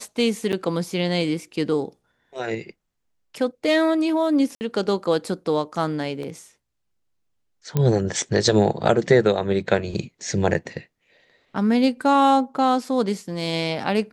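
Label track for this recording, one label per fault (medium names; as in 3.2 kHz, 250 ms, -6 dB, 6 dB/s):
0.520000	0.530000	dropout 8.2 ms
4.550000	4.610000	dropout 59 ms
6.230000	6.230000	dropout 2.7 ms
7.770000	7.770000	pop -9 dBFS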